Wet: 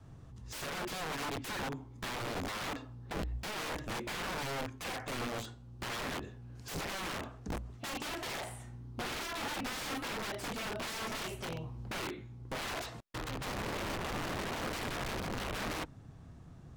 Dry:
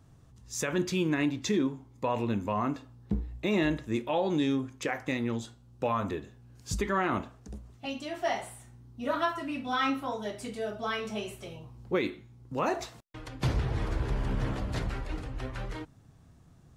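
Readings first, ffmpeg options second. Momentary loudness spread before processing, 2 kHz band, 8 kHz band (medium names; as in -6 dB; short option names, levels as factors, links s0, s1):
16 LU, -2.5 dB, -0.5 dB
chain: -filter_complex "[0:a]asplit=2[s0][s1];[s1]alimiter=level_in=1.19:limit=0.0631:level=0:latency=1:release=13,volume=0.841,volume=1.12[s2];[s0][s2]amix=inputs=2:normalize=0,adynamicequalizer=threshold=0.01:dfrequency=190:dqfactor=1.6:tfrequency=190:tqfactor=1.6:attack=5:release=100:ratio=0.375:range=3.5:mode=cutabove:tftype=bell,acompressor=threshold=0.0447:ratio=6,aeval=exprs='(mod(31.6*val(0)+1,2)-1)/31.6':c=same,aemphasis=mode=reproduction:type=cd,volume=0.794"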